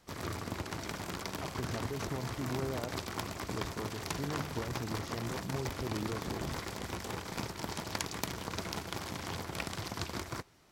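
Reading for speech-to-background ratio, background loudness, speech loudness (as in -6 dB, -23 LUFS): -2.0 dB, -39.5 LUFS, -41.5 LUFS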